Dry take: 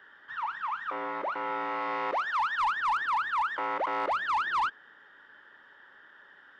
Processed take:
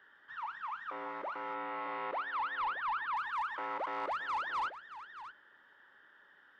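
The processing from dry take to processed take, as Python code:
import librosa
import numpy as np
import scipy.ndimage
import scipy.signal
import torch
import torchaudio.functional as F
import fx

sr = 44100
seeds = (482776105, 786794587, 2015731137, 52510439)

y = fx.lowpass(x, sr, hz=3900.0, slope=24, at=(1.54, 3.17))
y = y + 10.0 ** (-13.0 / 20.0) * np.pad(y, (int(623 * sr / 1000.0), 0))[:len(y)]
y = F.gain(torch.from_numpy(y), -7.5).numpy()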